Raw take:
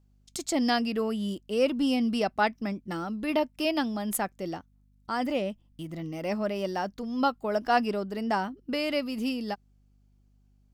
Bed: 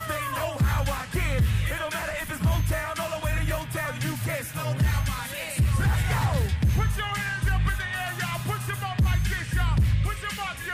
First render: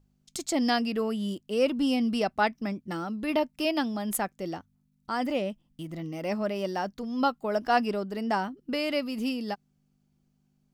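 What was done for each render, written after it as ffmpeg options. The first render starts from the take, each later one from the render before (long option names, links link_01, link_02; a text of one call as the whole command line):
ffmpeg -i in.wav -af "bandreject=frequency=50:width_type=h:width=4,bandreject=frequency=100:width_type=h:width=4" out.wav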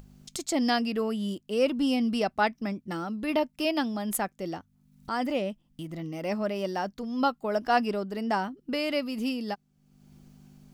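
ffmpeg -i in.wav -af "acompressor=mode=upward:threshold=-37dB:ratio=2.5" out.wav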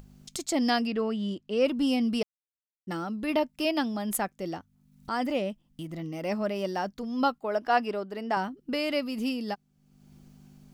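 ffmpeg -i in.wav -filter_complex "[0:a]asettb=1/sr,asplit=3[link_01][link_02][link_03];[link_01]atrim=end=0.874[link_04];[link_02]atrim=start=0.87:end=1.65,asetpts=PTS-STARTPTS,afade=type=in:duration=0.004:curve=qsin,afade=type=out:start_time=0.776:duration=0.004:curve=qsin,lowpass=4900[link_05];[link_03]atrim=start=1.646[link_06];[link_04][link_05]acrossfade=duration=0.004:curve1=hsin:curve2=qsin[link_07];[link_07][link_06]acrossfade=duration=0.004:curve1=qsin:curve2=hsin,asettb=1/sr,asplit=3[link_08][link_09][link_10];[link_08]atrim=end=7.384[link_11];[link_09]atrim=start=7.38:end=8.37,asetpts=PTS-STARTPTS,afade=type=in:duration=0.004:curve=qsin,afade=type=out:start_time=0.986:duration=0.004:curve=qsin,bass=frequency=250:gain=-9,treble=frequency=4000:gain=-6[link_12];[link_10]atrim=start=8.366[link_13];[link_11][link_12]acrossfade=duration=0.004:curve1=hsin:curve2=qsin[link_14];[link_14][link_13]acrossfade=duration=0.004:curve1=qsin:curve2=hsin,asplit=3[link_15][link_16][link_17];[link_15]atrim=end=2.23,asetpts=PTS-STARTPTS,afade=type=out:start_time=2.226:duration=0.004:curve=hsin[link_18];[link_16]atrim=start=2.23:end=2.87,asetpts=PTS-STARTPTS,volume=0[link_19];[link_17]atrim=start=2.87,asetpts=PTS-STARTPTS,afade=type=in:duration=0.004:curve=hsin[link_20];[link_18][link_19][link_20]concat=n=3:v=0:a=1" out.wav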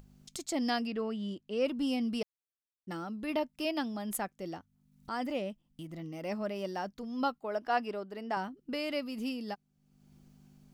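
ffmpeg -i in.wav -af "volume=-6dB" out.wav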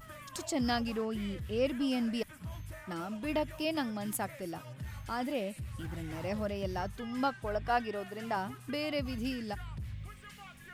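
ffmpeg -i in.wav -i bed.wav -filter_complex "[1:a]volume=-19.5dB[link_01];[0:a][link_01]amix=inputs=2:normalize=0" out.wav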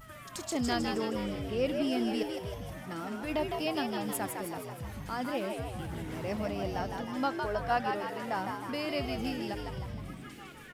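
ffmpeg -i in.wav -filter_complex "[0:a]asplit=8[link_01][link_02][link_03][link_04][link_05][link_06][link_07][link_08];[link_02]adelay=157,afreqshift=81,volume=-5dB[link_09];[link_03]adelay=314,afreqshift=162,volume=-10.4dB[link_10];[link_04]adelay=471,afreqshift=243,volume=-15.7dB[link_11];[link_05]adelay=628,afreqshift=324,volume=-21.1dB[link_12];[link_06]adelay=785,afreqshift=405,volume=-26.4dB[link_13];[link_07]adelay=942,afreqshift=486,volume=-31.8dB[link_14];[link_08]adelay=1099,afreqshift=567,volume=-37.1dB[link_15];[link_01][link_09][link_10][link_11][link_12][link_13][link_14][link_15]amix=inputs=8:normalize=0" out.wav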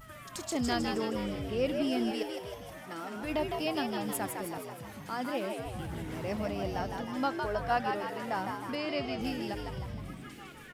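ffmpeg -i in.wav -filter_complex "[0:a]asettb=1/sr,asplit=3[link_01][link_02][link_03];[link_01]atrim=end=2.114[link_04];[link_02]atrim=start=2.11:end=3.16,asetpts=PTS-STARTPTS,afade=type=in:duration=0.004:curve=qsin,afade=type=out:start_time=1.046:duration=0.004:curve=qsin,bass=frequency=250:gain=-10,treble=frequency=4000:gain=0[link_05];[link_03]atrim=start=3.156[link_06];[link_04][link_05]acrossfade=duration=0.004:curve1=hsin:curve2=qsin[link_07];[link_07][link_06]acrossfade=duration=0.004:curve1=qsin:curve2=hsin,asettb=1/sr,asplit=3[link_08][link_09][link_10];[link_08]atrim=end=4.584[link_11];[link_09]atrim=start=4.58:end=5.66,asetpts=PTS-STARTPTS,afade=type=in:duration=0.004:curve=qsin,afade=type=out:start_time=1.076:duration=0.004:curve=qsin,highpass=160[link_12];[link_10]atrim=start=5.656[link_13];[link_11][link_12]acrossfade=duration=0.004:curve1=hsin:curve2=qsin[link_14];[link_14][link_13]acrossfade=duration=0.004:curve1=qsin:curve2=hsin,asettb=1/sr,asplit=3[link_15][link_16][link_17];[link_15]atrim=end=8.754[link_18];[link_16]atrim=start=8.75:end=9.21,asetpts=PTS-STARTPTS,afade=type=in:duration=0.004:curve=qsin,afade=type=out:start_time=0.456:duration=0.004:curve=qsin,highpass=120,lowpass=6200[link_19];[link_17]atrim=start=9.206[link_20];[link_18][link_19]acrossfade=duration=0.004:curve1=hsin:curve2=qsin[link_21];[link_21][link_20]acrossfade=duration=0.004:curve1=qsin:curve2=hsin" out.wav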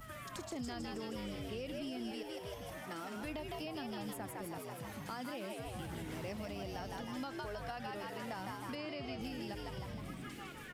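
ffmpeg -i in.wav -filter_complex "[0:a]alimiter=level_in=1dB:limit=-24dB:level=0:latency=1:release=58,volume=-1dB,acrossover=split=150|2300[link_01][link_02][link_03];[link_01]acompressor=threshold=-49dB:ratio=4[link_04];[link_02]acompressor=threshold=-43dB:ratio=4[link_05];[link_03]acompressor=threshold=-51dB:ratio=4[link_06];[link_04][link_05][link_06]amix=inputs=3:normalize=0" out.wav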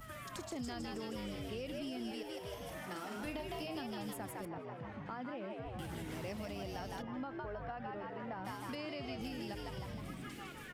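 ffmpeg -i in.wav -filter_complex "[0:a]asettb=1/sr,asplit=3[link_01][link_02][link_03];[link_01]atrim=end=2.494[link_04];[link_02]atrim=start=2.49:end=3.81,asetpts=PTS-STARTPTS,afade=type=in:duration=0.004:curve=qsin,afade=type=out:start_time=1.316:duration=0.004:curve=qsin,asplit=2[link_05][link_06];[link_06]adelay=44,volume=-7dB[link_07];[link_05][link_07]amix=inputs=2:normalize=0,atrim=end_sample=58212[link_08];[link_03]atrim=start=3.806[link_09];[link_04][link_08]acrossfade=duration=0.004:curve1=hsin:curve2=qsin[link_10];[link_10][link_09]acrossfade=duration=0.004:curve1=qsin:curve2=hsin,asettb=1/sr,asplit=3[link_11][link_12][link_13];[link_11]atrim=end=4.454[link_14];[link_12]atrim=start=4.45:end=5.79,asetpts=PTS-STARTPTS,afade=type=in:duration=0.004:curve=qsin,afade=type=out:start_time=1.336:duration=0.004:curve=qsin,lowpass=2000[link_15];[link_13]atrim=start=5.786[link_16];[link_14][link_15]acrossfade=duration=0.004:curve1=hsin:curve2=qsin[link_17];[link_17][link_16]acrossfade=duration=0.004:curve1=qsin:curve2=hsin,asplit=3[link_18][link_19][link_20];[link_18]afade=type=out:start_time=7.01:duration=0.02[link_21];[link_19]lowpass=1700,afade=type=in:start_time=7.01:duration=0.02,afade=type=out:start_time=8.44:duration=0.02[link_22];[link_20]afade=type=in:start_time=8.44:duration=0.02[link_23];[link_21][link_22][link_23]amix=inputs=3:normalize=0" out.wav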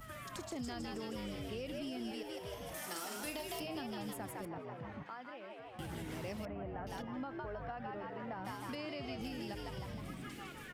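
ffmpeg -i in.wav -filter_complex "[0:a]asettb=1/sr,asplit=3[link_01][link_02][link_03];[link_01]atrim=end=2.744[link_04];[link_02]atrim=start=2.74:end=3.6,asetpts=PTS-STARTPTS,afade=type=in:duration=0.004:curve=qsin,afade=type=out:start_time=0.856:duration=0.004:curve=qsin,bass=frequency=250:gain=-8,treble=frequency=4000:gain=13[link_05];[link_03]atrim=start=3.596[link_06];[link_04][link_05]acrossfade=duration=0.004:curve1=hsin:curve2=qsin[link_07];[link_07][link_06]acrossfade=duration=0.004:curve1=qsin:curve2=hsin,asettb=1/sr,asplit=3[link_08][link_09][link_10];[link_08]atrim=end=5.034[link_11];[link_09]atrim=start=5.03:end=5.79,asetpts=PTS-STARTPTS,afade=type=in:duration=0.004:curve=qsin,afade=type=out:start_time=0.756:duration=0.004:curve=qsin,highpass=frequency=870:poles=1[link_12];[link_10]atrim=start=5.786[link_13];[link_11][link_12]acrossfade=duration=0.004:curve1=hsin:curve2=qsin[link_14];[link_14][link_13]acrossfade=duration=0.004:curve1=qsin:curve2=hsin,asettb=1/sr,asplit=3[link_15][link_16][link_17];[link_15]atrim=end=6.454[link_18];[link_16]atrim=start=6.45:end=6.87,asetpts=PTS-STARTPTS,afade=type=in:duration=0.004:curve=qsin,afade=type=out:start_time=0.416:duration=0.004:curve=qsin,lowpass=frequency=1900:width=0.5412,lowpass=frequency=1900:width=1.3066[link_19];[link_17]atrim=start=6.866[link_20];[link_18][link_19]acrossfade=duration=0.004:curve1=hsin:curve2=qsin[link_21];[link_21][link_20]acrossfade=duration=0.004:curve1=qsin:curve2=hsin" out.wav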